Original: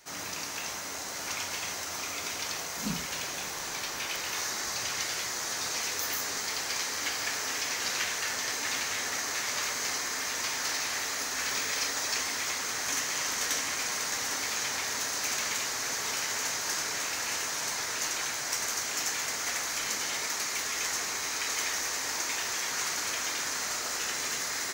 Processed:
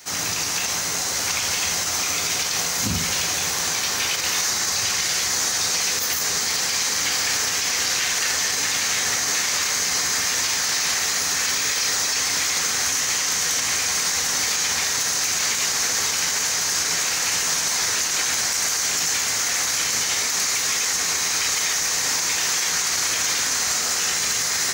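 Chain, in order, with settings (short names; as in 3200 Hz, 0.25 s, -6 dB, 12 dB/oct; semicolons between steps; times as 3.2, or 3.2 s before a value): octaver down 1 oct, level -1 dB; high shelf 2800 Hz +8 dB; on a send at -11 dB: reverb RT60 0.55 s, pre-delay 3 ms; on the sum: limiter -20 dBFS, peak gain reduction 10 dB; HPF 42 Hz; bell 14000 Hz -4 dB 0.67 oct; bit-crush 11-bit; gain +8 dB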